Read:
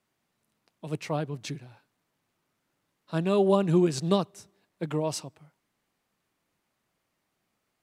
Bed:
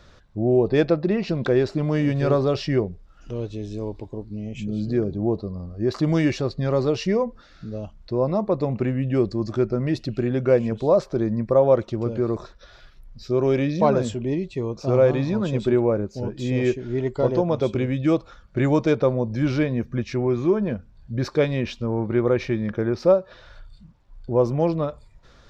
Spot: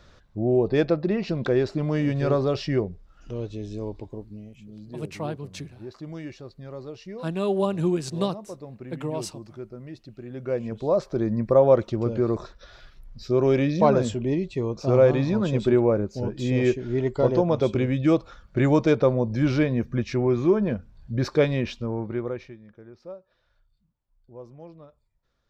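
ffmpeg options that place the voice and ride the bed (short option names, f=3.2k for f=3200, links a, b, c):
-filter_complex "[0:a]adelay=4100,volume=-1.5dB[a];[1:a]volume=14dB,afade=t=out:st=4.06:d=0.51:silence=0.199526,afade=t=in:st=10.24:d=1.27:silence=0.149624,afade=t=out:st=21.47:d=1.1:silence=0.0707946[b];[a][b]amix=inputs=2:normalize=0"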